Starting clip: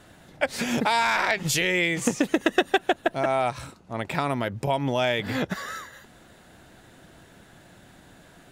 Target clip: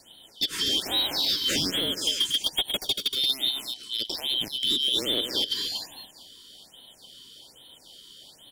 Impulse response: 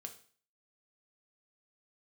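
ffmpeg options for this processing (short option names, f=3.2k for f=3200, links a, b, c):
-filter_complex "[0:a]afftfilt=real='real(if(lt(b,272),68*(eq(floor(b/68),0)*2+eq(floor(b/68),1)*3+eq(floor(b/68),2)*0+eq(floor(b/68),3)*1)+mod(b,68),b),0)':imag='imag(if(lt(b,272),68*(eq(floor(b/68),0)*2+eq(floor(b/68),1)*3+eq(floor(b/68),2)*0+eq(floor(b/68),3)*1)+mod(b,68),b),0)':win_size=2048:overlap=0.75,acontrast=22,equalizer=f=290:w=1.2:g=9,bandreject=f=1.2k:w=5.6,volume=16dB,asoftclip=hard,volume=-16dB,aecho=1:1:101|236:0.119|0.422,acrossover=split=5300[a][b];[b]acompressor=threshold=-34dB:ratio=4:attack=1:release=60[c];[a][c]amix=inputs=2:normalize=0,highshelf=f=5.9k:g=7,afftfilt=real='re*(1-between(b*sr/1024,640*pow(6200/640,0.5+0.5*sin(2*PI*1.2*pts/sr))/1.41,640*pow(6200/640,0.5+0.5*sin(2*PI*1.2*pts/sr))*1.41))':imag='im*(1-between(b*sr/1024,640*pow(6200/640,0.5+0.5*sin(2*PI*1.2*pts/sr))/1.41,640*pow(6200/640,0.5+0.5*sin(2*PI*1.2*pts/sr))*1.41))':win_size=1024:overlap=0.75,volume=-5dB"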